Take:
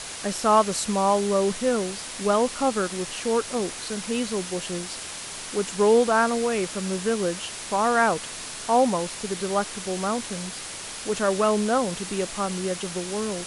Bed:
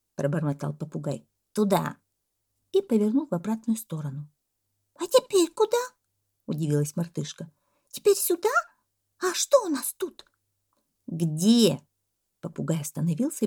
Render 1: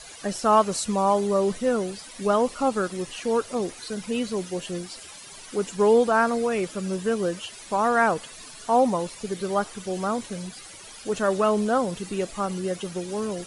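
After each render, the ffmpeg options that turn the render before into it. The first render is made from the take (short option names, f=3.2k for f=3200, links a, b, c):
-af "afftdn=nr=13:nf=-36"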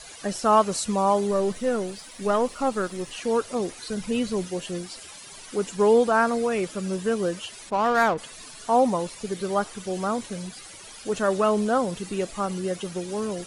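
-filter_complex "[0:a]asettb=1/sr,asplit=3[a][b][c];[a]atrim=end=1.314[d];[b]atrim=start=1.31:end=3.11,asetpts=PTS-STARTPTS,afade=t=in:d=0.004:c=qsin,afade=t=out:st=1.796:d=0.004:c=qsin,aeval=exprs='if(lt(val(0),0),0.708*val(0),val(0))':c=same[e];[c]atrim=start=3.106[f];[d][e]acrossfade=d=0.004:c1=hsin:c2=qsin[g];[g][f]acrossfade=d=0.004:c1=qsin:c2=hsin,asettb=1/sr,asplit=3[h][i][j];[h]atrim=end=3.884[k];[i]atrim=start=3.88:end=4.48,asetpts=PTS-STARTPTS,afade=t=in:d=0.004:c=qsin,afade=t=out:st=0.596:d=0.004:c=qsin,lowshelf=f=110:g=11[l];[j]atrim=start=4.476[m];[k][l]acrossfade=d=0.004:c1=hsin:c2=qsin[n];[n][m]acrossfade=d=0.004:c1=qsin:c2=hsin,asplit=3[o][p][q];[o]afade=t=out:st=7.69:d=0.02[r];[p]adynamicsmooth=sensitivity=3:basefreq=860,afade=t=in:st=7.69:d=0.02,afade=t=out:st=8.17:d=0.02[s];[q]afade=t=in:st=8.17:d=0.02[t];[r][s][t]amix=inputs=3:normalize=0"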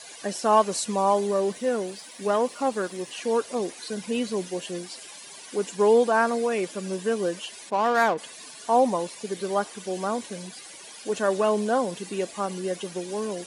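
-af "highpass=220,bandreject=f=1.3k:w=8.1"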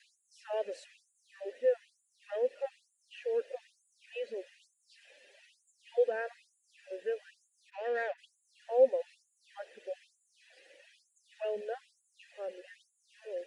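-filter_complex "[0:a]asplit=3[a][b][c];[a]bandpass=f=530:t=q:w=8,volume=0dB[d];[b]bandpass=f=1.84k:t=q:w=8,volume=-6dB[e];[c]bandpass=f=2.48k:t=q:w=8,volume=-9dB[f];[d][e][f]amix=inputs=3:normalize=0,afftfilt=real='re*gte(b*sr/1024,210*pow(6800/210,0.5+0.5*sin(2*PI*1.1*pts/sr)))':imag='im*gte(b*sr/1024,210*pow(6800/210,0.5+0.5*sin(2*PI*1.1*pts/sr)))':win_size=1024:overlap=0.75"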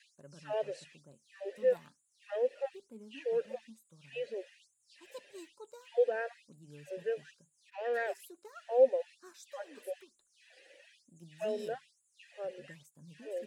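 -filter_complex "[1:a]volume=-28.5dB[a];[0:a][a]amix=inputs=2:normalize=0"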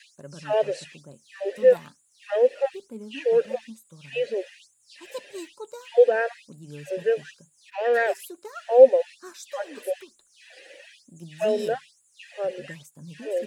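-af "volume=12dB"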